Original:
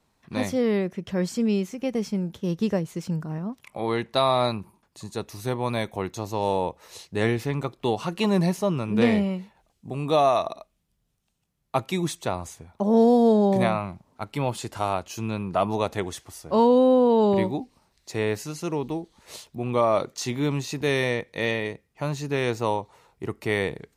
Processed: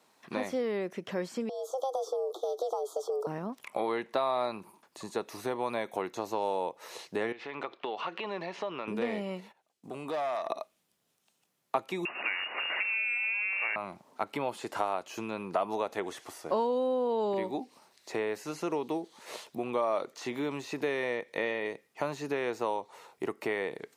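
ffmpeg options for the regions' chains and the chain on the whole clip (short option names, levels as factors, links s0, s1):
-filter_complex "[0:a]asettb=1/sr,asplit=3[s0][s1][s2];[s0]atrim=end=1.494[s3];[s1]atrim=start=1.49:end=3.27,asetpts=PTS-STARTPTS,afade=t=in:d=0.004:c=qsin,afade=t=out:st=1.776:d=0.004:c=qsin,afreqshift=270,acompressor=threshold=0.0282:ratio=10:attack=3.2:release=140:knee=1:detection=peak,asuperstop=centerf=2100:order=20:qfactor=1.1[s4];[s2]atrim=start=3.266[s5];[s3][s4]acrossfade=d=0.004:c1=hsin:c2=qsin[s6];[s6][s5]acrossfade=d=0.004:c1=qsin:c2=hsin,asettb=1/sr,asplit=3[s7][s8][s9];[s7]atrim=end=7.324[s10];[s8]atrim=start=7.32:end=8.88,asetpts=PTS-STARTPTS,afade=t=in:d=0.004:c=qsin,afade=t=out:st=1.556:d=0.004:c=qsin,lowpass=f=3200:w=0.5412,lowpass=f=3200:w=1.3066,aemphasis=mode=production:type=riaa,acompressor=threshold=0.0178:ratio=6:attack=3.2:release=140:knee=1:detection=peak[s11];[s9]atrim=start=8.876[s12];[s10][s11]acrossfade=d=0.004:c1=hsin:c2=qsin[s13];[s13][s12]acrossfade=d=0.004:c1=qsin:c2=hsin,asettb=1/sr,asplit=3[s14][s15][s16];[s14]atrim=end=9.404[s17];[s15]atrim=start=9.4:end=10.5,asetpts=PTS-STARTPTS,afade=t=in:d=0.004:c=qsin,afade=t=out:st=1.096:d=0.004:c=qsin,aeval=exprs='(tanh(8.91*val(0)+0.3)-tanh(0.3))/8.91':c=same,agate=range=0.224:threshold=0.00126:ratio=16:release=100:detection=peak,acompressor=threshold=0.01:ratio=2.5:attack=3.2:release=140:knee=1:detection=peak[s18];[s16]atrim=start=10.496[s19];[s17][s18]acrossfade=d=0.004:c1=hsin:c2=qsin[s20];[s20][s19]acrossfade=d=0.004:c1=qsin:c2=hsin,asettb=1/sr,asplit=3[s21][s22][s23];[s21]atrim=end=12.054[s24];[s22]atrim=start=12.05:end=13.76,asetpts=PTS-STARTPTS,afade=t=in:d=0.004:c=qsin,afade=t=out:st=1.706:d=0.004:c=qsin,aeval=exprs='val(0)+0.5*0.0596*sgn(val(0))':c=same,lowpass=f=2500:t=q:w=0.5098,lowpass=f=2500:t=q:w=0.6013,lowpass=f=2500:t=q:w=0.9,lowpass=f=2500:t=q:w=2.563,afreqshift=-2900[s25];[s23]atrim=start=13.756[s26];[s24][s25]acrossfade=d=0.004:c1=hsin:c2=qsin[s27];[s27][s26]acrossfade=d=0.004:c1=qsin:c2=hsin,acompressor=threshold=0.0251:ratio=5,highpass=340,acrossover=split=2500[s28][s29];[s29]acompressor=threshold=0.00224:ratio=4:attack=1:release=60[s30];[s28][s30]amix=inputs=2:normalize=0,volume=1.88"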